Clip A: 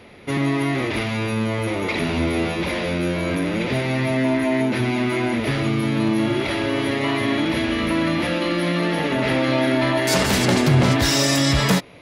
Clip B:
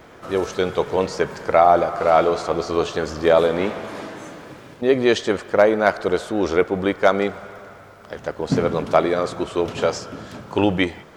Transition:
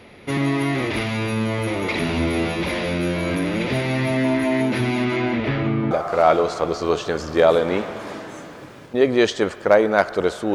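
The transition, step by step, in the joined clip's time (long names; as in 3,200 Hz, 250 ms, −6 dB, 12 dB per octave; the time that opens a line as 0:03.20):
clip A
0:05.04–0:05.91: low-pass filter 7,100 Hz → 1,300 Hz
0:05.91: continue with clip B from 0:01.79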